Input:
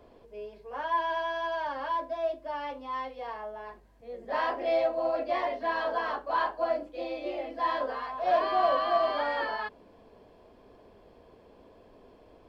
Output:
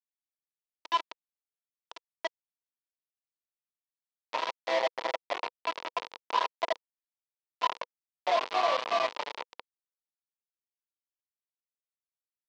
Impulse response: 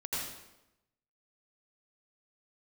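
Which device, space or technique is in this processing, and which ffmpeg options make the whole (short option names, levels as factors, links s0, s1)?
hand-held game console: -af "acrusher=bits=3:mix=0:aa=0.000001,highpass=410,equalizer=f=490:t=q:w=4:g=6,equalizer=f=950:t=q:w=4:g=8,equalizer=f=1600:t=q:w=4:g=-4,lowpass=f=4700:w=0.5412,lowpass=f=4700:w=1.3066,volume=0.562"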